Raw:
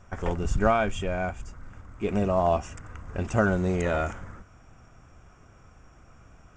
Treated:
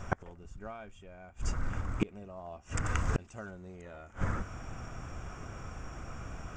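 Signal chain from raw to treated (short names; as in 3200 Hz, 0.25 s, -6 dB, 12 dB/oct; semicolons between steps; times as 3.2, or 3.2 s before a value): 2.85–3.51 high shelf 2700 Hz +9.5 dB; flipped gate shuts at -25 dBFS, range -32 dB; gain +10 dB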